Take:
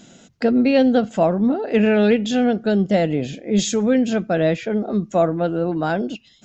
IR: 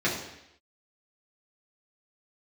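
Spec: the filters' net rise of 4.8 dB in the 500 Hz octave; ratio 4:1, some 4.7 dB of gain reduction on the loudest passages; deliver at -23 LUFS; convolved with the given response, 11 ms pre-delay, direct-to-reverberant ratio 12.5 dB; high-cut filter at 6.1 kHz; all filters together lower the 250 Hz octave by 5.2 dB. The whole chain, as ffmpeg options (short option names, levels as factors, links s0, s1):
-filter_complex "[0:a]lowpass=6100,equalizer=f=250:t=o:g=-8,equalizer=f=500:t=o:g=7.5,acompressor=threshold=0.2:ratio=4,asplit=2[s0][s1];[1:a]atrim=start_sample=2205,adelay=11[s2];[s1][s2]afir=irnorm=-1:irlink=0,volume=0.0562[s3];[s0][s3]amix=inputs=2:normalize=0,volume=0.708"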